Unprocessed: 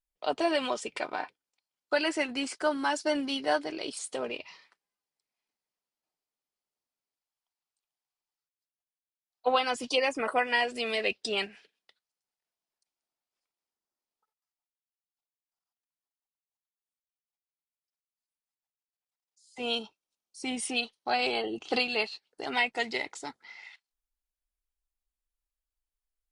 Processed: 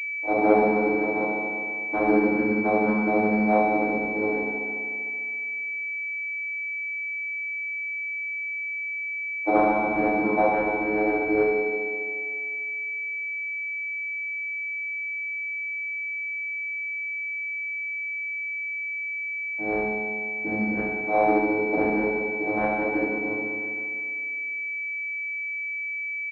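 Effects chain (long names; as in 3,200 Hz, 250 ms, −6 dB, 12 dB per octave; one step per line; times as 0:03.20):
mains-hum notches 60/120/180/240/300/360 Hz
comb filter 2.8 ms
channel vocoder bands 8, saw 106 Hz
single-tap delay 75 ms −10.5 dB
feedback delay network reverb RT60 2.3 s, low-frequency decay 0.95×, high-frequency decay 0.4×, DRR −10 dB
switching amplifier with a slow clock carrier 2,300 Hz
level −3 dB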